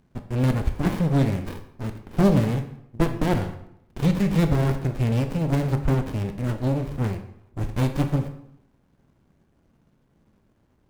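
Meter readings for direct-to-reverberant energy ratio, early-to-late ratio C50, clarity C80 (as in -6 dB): 7.0 dB, 10.0 dB, 13.0 dB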